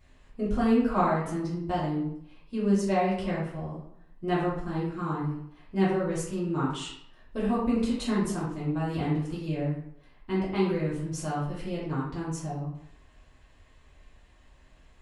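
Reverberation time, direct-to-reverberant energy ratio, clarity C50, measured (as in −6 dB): 0.75 s, −9.0 dB, 2.0 dB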